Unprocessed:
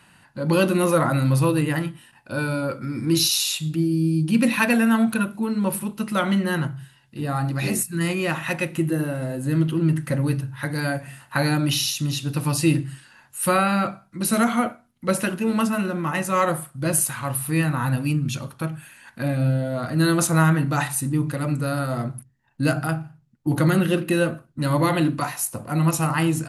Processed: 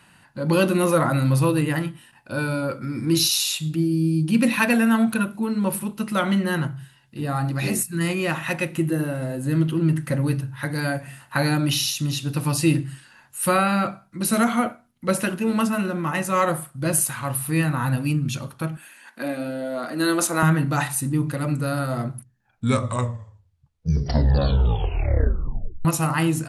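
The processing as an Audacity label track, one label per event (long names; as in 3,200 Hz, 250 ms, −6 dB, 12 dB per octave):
18.770000	20.430000	high-pass filter 240 Hz 24 dB per octave
22.140000	22.140000	tape stop 3.71 s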